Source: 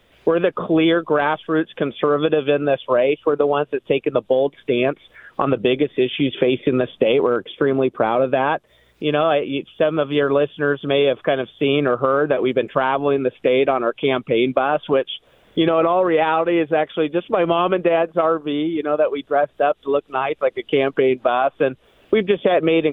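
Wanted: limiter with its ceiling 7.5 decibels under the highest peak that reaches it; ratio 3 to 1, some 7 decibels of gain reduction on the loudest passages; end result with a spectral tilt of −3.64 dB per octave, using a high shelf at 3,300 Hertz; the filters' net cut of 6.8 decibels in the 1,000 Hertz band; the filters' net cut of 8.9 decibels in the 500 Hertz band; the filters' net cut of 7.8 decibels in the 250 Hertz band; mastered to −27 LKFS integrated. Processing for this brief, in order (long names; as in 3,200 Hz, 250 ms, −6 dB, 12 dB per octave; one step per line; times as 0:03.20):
parametric band 250 Hz −7 dB
parametric band 500 Hz −7.5 dB
parametric band 1,000 Hz −5.5 dB
high-shelf EQ 3,300 Hz −4.5 dB
downward compressor 3 to 1, threshold −30 dBFS
level +7.5 dB
brickwall limiter −14.5 dBFS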